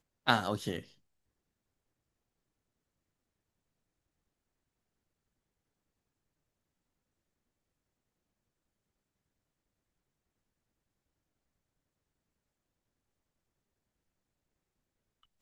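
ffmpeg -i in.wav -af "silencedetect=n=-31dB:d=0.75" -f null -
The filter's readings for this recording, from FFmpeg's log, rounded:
silence_start: 0.79
silence_end: 15.42 | silence_duration: 14.63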